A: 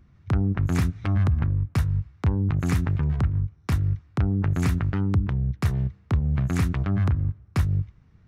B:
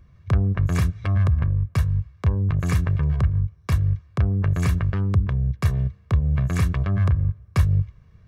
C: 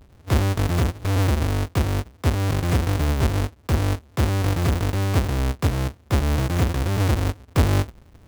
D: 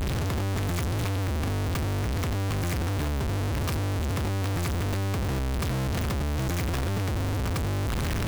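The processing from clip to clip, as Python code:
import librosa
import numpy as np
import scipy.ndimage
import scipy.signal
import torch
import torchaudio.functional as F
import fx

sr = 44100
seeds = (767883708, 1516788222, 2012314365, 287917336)

y1 = x + 0.56 * np.pad(x, (int(1.8 * sr / 1000.0), 0))[:len(x)]
y1 = fx.rider(y1, sr, range_db=4, speed_s=2.0)
y2 = fx.halfwave_hold(y1, sr)
y2 = fx.rider(y2, sr, range_db=4, speed_s=2.0)
y2 = y2 * librosa.db_to_amplitude(-4.5)
y3 = np.sign(y2) * np.sqrt(np.mean(np.square(y2)))
y3 = y3 * librosa.db_to_amplitude(-5.5)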